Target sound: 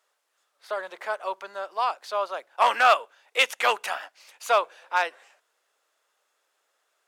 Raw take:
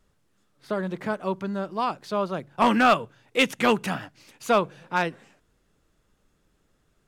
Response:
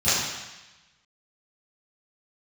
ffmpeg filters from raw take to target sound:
-af "highpass=f=580:w=0.5412,highpass=f=580:w=1.3066,volume=1.5dB"

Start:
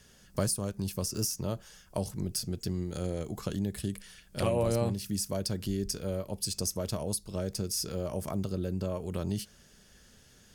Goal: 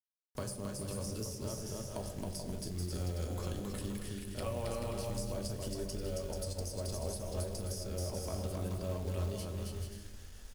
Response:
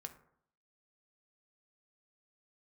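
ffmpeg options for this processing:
-filter_complex "[0:a]asubboost=boost=8:cutoff=53,agate=range=-33dB:threshold=-45dB:ratio=3:detection=peak,adynamicequalizer=threshold=0.00398:dfrequency=110:dqfactor=4.1:tfrequency=110:tqfactor=4.1:attack=5:release=100:ratio=0.375:range=2:mode=cutabove:tftype=bell,acompressor=threshold=-50dB:ratio=1.5,aecho=1:1:270|432|529.2|587.5|622.5:0.631|0.398|0.251|0.158|0.1,acrossover=split=90|900[a][b][c];[a]acompressor=threshold=-46dB:ratio=4[d];[b]acompressor=threshold=-40dB:ratio=4[e];[c]acompressor=threshold=-46dB:ratio=4[f];[d][e][f]amix=inputs=3:normalize=0,acrusher=bits=9:mix=0:aa=0.000001[g];[1:a]atrim=start_sample=2205,asetrate=22932,aresample=44100[h];[g][h]afir=irnorm=-1:irlink=0,acrusher=bits=5:mode=log:mix=0:aa=0.000001,volume=3.5dB"

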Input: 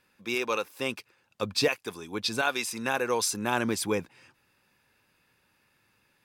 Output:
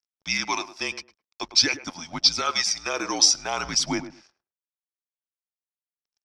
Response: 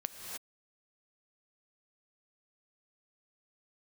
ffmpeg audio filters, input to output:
-filter_complex "[0:a]highpass=600,highshelf=f=2.9k:g=-3.5,asplit=2[a][b];[b]alimiter=limit=-23dB:level=0:latency=1:release=34,volume=-1dB[c];[a][c]amix=inputs=2:normalize=0,aphaser=in_gain=1:out_gain=1:delay=1.6:decay=0.43:speed=0.49:type=sinusoidal,afreqshift=-170,aeval=exprs='sgn(val(0))*max(abs(val(0))-0.00224,0)':c=same,lowpass=f=5.5k:t=q:w=9.8,asplit=2[d][e];[e]adelay=106,lowpass=f=1k:p=1,volume=-11dB,asplit=2[f][g];[g]adelay=106,lowpass=f=1k:p=1,volume=0.18[h];[f][h]amix=inputs=2:normalize=0[i];[d][i]amix=inputs=2:normalize=0,volume=-2dB"

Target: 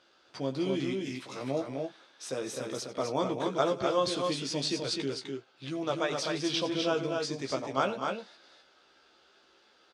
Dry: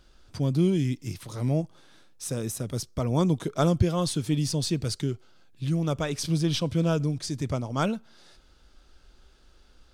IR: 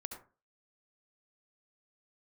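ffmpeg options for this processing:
-filter_complex "[0:a]asplit=2[a][b];[b]alimiter=limit=-18dB:level=0:latency=1:release=247,volume=2dB[c];[a][c]amix=inputs=2:normalize=0,highpass=410,lowpass=4.7k,asplit=2[d][e];[e]adelay=15,volume=-5dB[f];[d][f]amix=inputs=2:normalize=0,aecho=1:1:90|215|254|280:0.141|0.188|0.631|0.119,volume=-6.5dB"

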